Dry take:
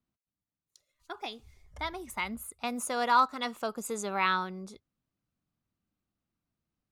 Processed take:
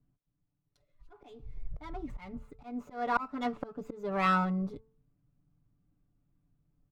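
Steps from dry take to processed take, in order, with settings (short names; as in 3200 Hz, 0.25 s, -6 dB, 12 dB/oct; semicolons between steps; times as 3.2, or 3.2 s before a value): air absorption 130 m; comb 6.9 ms, depth 91%; auto swell 0.356 s; tilt -4 dB/oct; de-hum 221.4 Hz, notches 7; running maximum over 3 samples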